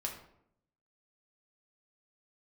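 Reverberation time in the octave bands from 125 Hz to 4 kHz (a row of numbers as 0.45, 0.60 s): 1.0, 0.95, 0.80, 0.70, 0.55, 0.45 s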